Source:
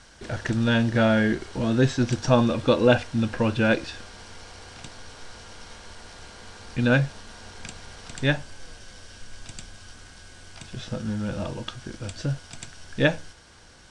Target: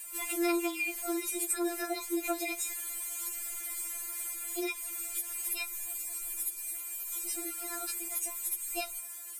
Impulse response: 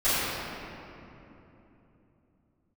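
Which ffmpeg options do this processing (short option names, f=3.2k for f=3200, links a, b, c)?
-filter_complex "[0:a]lowshelf=f=87:g=-8.5,acrossover=split=2600[a][b];[b]aexciter=amount=10.6:drive=3.9:freq=5.2k[c];[a][c]amix=inputs=2:normalize=0,acompressor=threshold=-26dB:ratio=4,lowshelf=f=410:g=-10.5,asetrate=65268,aresample=44100,afftfilt=real='re*4*eq(mod(b,16),0)':imag='im*4*eq(mod(b,16),0)':win_size=2048:overlap=0.75"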